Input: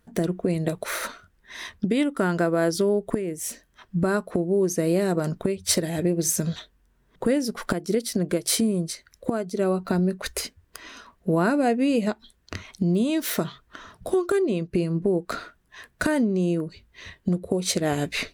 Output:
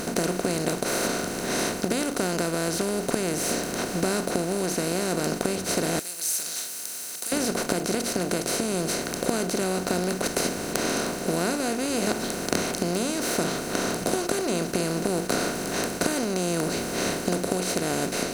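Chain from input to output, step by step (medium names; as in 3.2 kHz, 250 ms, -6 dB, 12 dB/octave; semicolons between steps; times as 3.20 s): spectral levelling over time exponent 0.2; 5.99–7.32 s: pre-emphasis filter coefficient 0.97; gain riding within 5 dB 0.5 s; trim -10.5 dB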